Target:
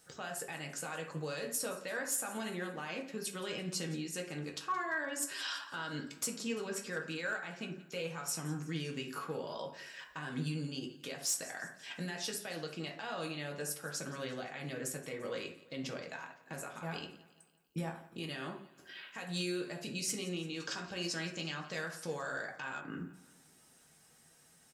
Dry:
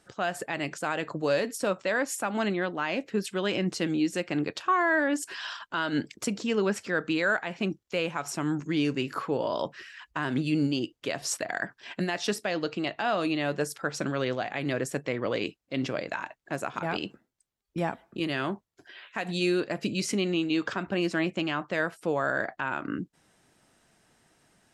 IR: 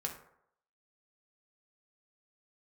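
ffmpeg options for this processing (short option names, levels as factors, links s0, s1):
-filter_complex "[0:a]alimiter=level_in=1.19:limit=0.0631:level=0:latency=1:release=360,volume=0.841,aemphasis=mode=production:type=75kf,aecho=1:1:171|342|513|684:0.119|0.057|0.0274|0.0131[s0];[1:a]atrim=start_sample=2205,atrim=end_sample=6174[s1];[s0][s1]afir=irnorm=-1:irlink=0,asoftclip=type=hard:threshold=0.0794,asettb=1/sr,asplit=3[s2][s3][s4];[s2]atrim=end=20.604[s5];[s3]atrim=start=20.6:end=22.81,asetpts=PTS-STARTPTS,afade=t=in:d=0.004:c=qsin,afade=t=out:st=2.206:d=0.004:c=qsin,equalizer=f=5400:t=o:w=1.1:g=11.5[s6];[s4]atrim=start=22.806[s7];[s5][s6]acrossfade=d=0.004:c1=hsin:c2=qsin[s8];[s8][s7]acrossfade=d=0.004:c1=qsin:c2=hsin,volume=0.531"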